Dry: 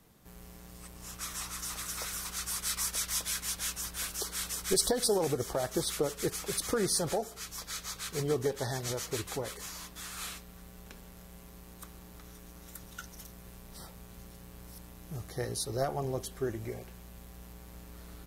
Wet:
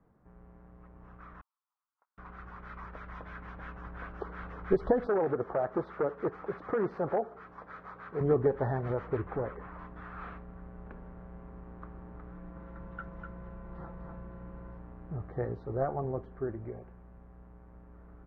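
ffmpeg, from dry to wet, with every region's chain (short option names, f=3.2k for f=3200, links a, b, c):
-filter_complex "[0:a]asettb=1/sr,asplit=3[a][b][c];[a]atrim=end=1.414[d];[b]atrim=start=1.41:end=2.18,asetpts=PTS-STARTPTS,afade=t=in:d=0.004:c=qsin,afade=t=out:st=0.766:d=0.004:c=qsin,highpass=f=910:t=q:w=3.9,agate=range=-51dB:threshold=-31dB:ratio=16:release=100:detection=peak[e];[c]atrim=start=2.176[f];[d][e]acrossfade=d=0.004:c1=hsin:c2=qsin[g];[g][f]acrossfade=d=0.004:c1=qsin:c2=hsin,asettb=1/sr,asplit=3[h][i][j];[h]atrim=end=5.074[k];[i]atrim=start=5.07:end=8.21,asetpts=PTS-STARTPTS,afade=t=in:d=0.004:c=qsin,afade=t=out:st=3.136:d=0.004:c=qsin,equalizer=f=2.8k:t=o:w=1.1:g=-4.5,aeval=exprs='0.0596*(abs(mod(val(0)/0.0596+3,4)-2)-1)':c=same,highpass=f=310:p=1[l];[j]atrim=start=8.206[m];[k][l]acrossfade=d=0.004:c1=hsin:c2=qsin[n];[n][m]acrossfade=d=0.004:c1=qsin:c2=hsin,asettb=1/sr,asplit=3[o][p][q];[o]atrim=end=9.174[r];[p]atrim=start=9.17:end=9.79,asetpts=PTS-STARTPTS,afade=t=in:d=0.004:c=qsin,afade=t=out:st=0.616:d=0.004:c=qsin,lowpass=2.9k,asoftclip=type=hard:threshold=-31dB[s];[q]atrim=start=9.786[t];[r][s]acrossfade=d=0.004:c1=hsin:c2=qsin[u];[u][t]acrossfade=d=0.004:c1=qsin:c2=hsin,asettb=1/sr,asplit=3[v][w][x];[v]atrim=end=12.314[y];[w]atrim=start=12.31:end=14.77,asetpts=PTS-STARTPTS,afade=t=in:d=0.004:c=qsin,afade=t=out:st=2.456:d=0.004:c=qsin,aecho=1:1:5.9:0.54,atrim=end_sample=108486,aecho=1:1:248:0.562,atrim=end_sample=108486[z];[x]atrim=start=14.766[aa];[y][z]acrossfade=d=0.004:c1=hsin:c2=qsin[ab];[ab][aa]acrossfade=d=0.004:c1=qsin:c2=hsin,lowpass=f=1.5k:w=0.5412,lowpass=f=1.5k:w=1.3066,dynaudnorm=f=360:g=17:m=8dB,volume=-3.5dB"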